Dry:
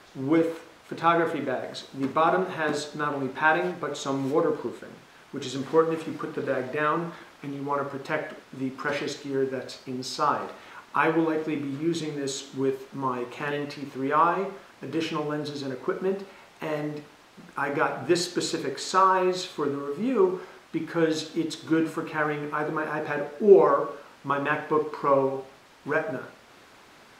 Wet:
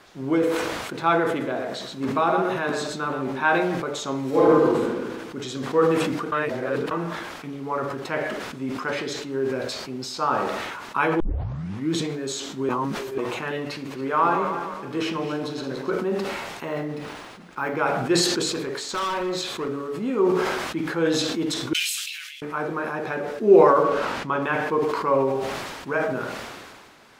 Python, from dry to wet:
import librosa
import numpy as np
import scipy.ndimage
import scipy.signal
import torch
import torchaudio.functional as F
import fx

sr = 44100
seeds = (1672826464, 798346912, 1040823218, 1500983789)

y = fx.echo_single(x, sr, ms=123, db=-6.5, at=(1.28, 3.47))
y = fx.reverb_throw(y, sr, start_s=4.29, length_s=0.55, rt60_s=1.1, drr_db=-8.5)
y = fx.reverse_delay_fb(y, sr, ms=146, feedback_pct=57, wet_db=-8.5, at=(13.72, 15.91))
y = fx.resample_linear(y, sr, factor=3, at=(16.65, 17.77))
y = fx.clip_hard(y, sr, threshold_db=-24.0, at=(18.53, 19.68))
y = fx.steep_highpass(y, sr, hz=2800.0, slope=36, at=(21.73, 22.42))
y = fx.high_shelf(y, sr, hz=6600.0, db=-11.0, at=(23.83, 24.42))
y = fx.edit(y, sr, fx.reverse_span(start_s=6.32, length_s=0.59),
    fx.tape_start(start_s=11.2, length_s=0.72),
    fx.reverse_span(start_s=12.69, length_s=0.49), tone=tone)
y = fx.sustainer(y, sr, db_per_s=31.0)